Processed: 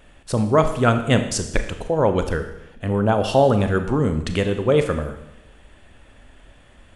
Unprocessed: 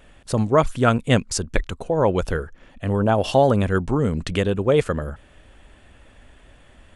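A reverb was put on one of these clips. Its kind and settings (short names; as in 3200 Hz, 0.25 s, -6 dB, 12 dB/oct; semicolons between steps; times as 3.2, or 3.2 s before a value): Schroeder reverb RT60 0.9 s, combs from 26 ms, DRR 7.5 dB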